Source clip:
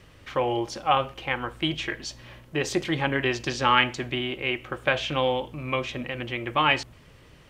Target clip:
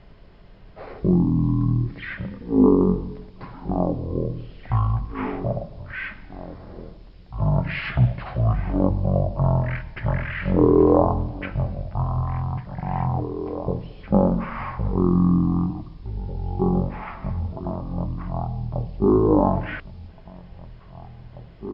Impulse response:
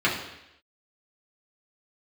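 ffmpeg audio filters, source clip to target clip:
-af "equalizer=f=2800:t=o:w=1.2:g=-9.5,aecho=1:1:900:0.188,asetrate=15214,aresample=44100,volume=2"

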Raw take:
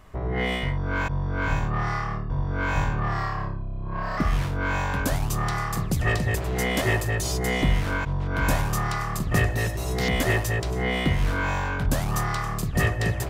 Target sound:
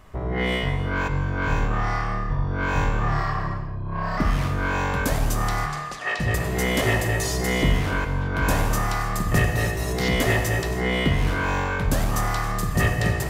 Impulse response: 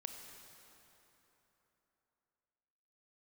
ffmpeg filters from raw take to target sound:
-filter_complex "[0:a]asplit=3[s0][s1][s2];[s0]afade=t=out:st=5.65:d=0.02[s3];[s1]highpass=680,lowpass=5100,afade=t=in:st=5.65:d=0.02,afade=t=out:st=6.19:d=0.02[s4];[s2]afade=t=in:st=6.19:d=0.02[s5];[s3][s4][s5]amix=inputs=3:normalize=0[s6];[1:a]atrim=start_sample=2205,afade=t=out:st=0.38:d=0.01,atrim=end_sample=17199[s7];[s6][s7]afir=irnorm=-1:irlink=0,volume=1.88"

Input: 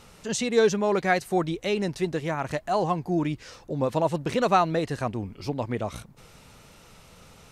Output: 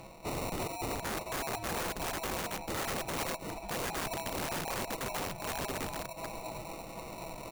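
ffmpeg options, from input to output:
-filter_complex "[0:a]afftfilt=real='real(if(lt(b,1008),b+24*(1-2*mod(floor(b/24),2)),b),0)':imag='imag(if(lt(b,1008),b+24*(1-2*mod(floor(b/24),2)),b),0)':win_size=2048:overlap=0.75,areverse,acompressor=mode=upward:threshold=0.0224:ratio=2.5,areverse,equalizer=f=230:t=o:w=2.8:g=-9,aecho=1:1:6.1:0.58,acrusher=samples=27:mix=1:aa=0.000001,acompressor=threshold=0.0398:ratio=12,asplit=2[s0][s1];[s1]adelay=743,lowpass=f=3500:p=1,volume=0.266,asplit=2[s2][s3];[s3]adelay=743,lowpass=f=3500:p=1,volume=0.44,asplit=2[s4][s5];[s5]adelay=743,lowpass=f=3500:p=1,volume=0.44,asplit=2[s6][s7];[s7]adelay=743,lowpass=f=3500:p=1,volume=0.44[s8];[s2][s4][s6][s8]amix=inputs=4:normalize=0[s9];[s0][s9]amix=inputs=2:normalize=0,aeval=exprs='(mod(35.5*val(0)+1,2)-1)/35.5':c=same,adynamicequalizer=threshold=0.00224:dfrequency=6300:dqfactor=0.7:tfrequency=6300:tqfactor=0.7:attack=5:release=100:ratio=0.375:range=2.5:mode=boostabove:tftype=highshelf"

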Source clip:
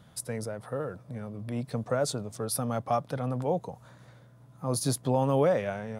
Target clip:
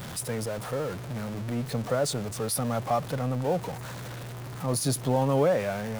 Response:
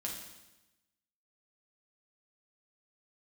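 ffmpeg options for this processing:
-af "aeval=exprs='val(0)+0.5*0.0211*sgn(val(0))':c=same"

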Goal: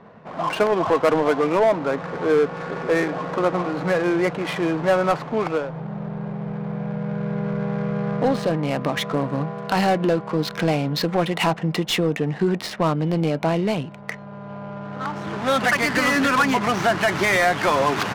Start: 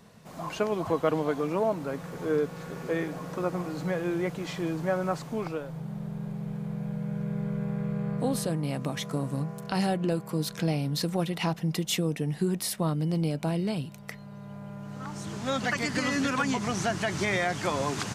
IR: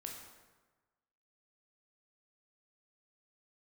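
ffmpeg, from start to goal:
-filter_complex "[0:a]asplit=2[s0][s1];[s1]highpass=f=720:p=1,volume=6.31,asoftclip=type=tanh:threshold=0.237[s2];[s0][s2]amix=inputs=2:normalize=0,lowpass=f=2200:p=1,volume=0.501,adynamicsmooth=sensitivity=7:basefreq=1300,volume=1.88"

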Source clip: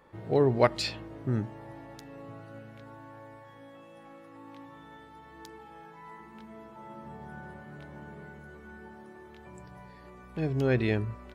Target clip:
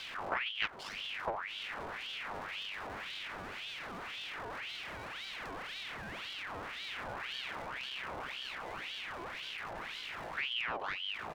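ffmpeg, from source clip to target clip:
-filter_complex "[0:a]aeval=exprs='val(0)+0.5*0.0299*sgn(val(0))':c=same,acompressor=threshold=0.0398:ratio=16,lowpass=f=2000:p=1,asplit=2[s0][s1];[s1]adelay=380,highpass=300,lowpass=3400,asoftclip=type=hard:threshold=0.0282,volume=0.0708[s2];[s0][s2]amix=inputs=2:normalize=0,asetrate=39289,aresample=44100,atempo=1.12246,aeval=exprs='0.0891*(cos(1*acos(clip(val(0)/0.0891,-1,1)))-cos(1*PI/2))+0.0178*(cos(3*acos(clip(val(0)/0.0891,-1,1)))-cos(3*PI/2))+0.01*(cos(4*acos(clip(val(0)/0.0891,-1,1)))-cos(4*PI/2))':c=same,aeval=exprs='val(0)*sin(2*PI*1900*n/s+1900*0.65/1.9*sin(2*PI*1.9*n/s))':c=same,volume=1.26"

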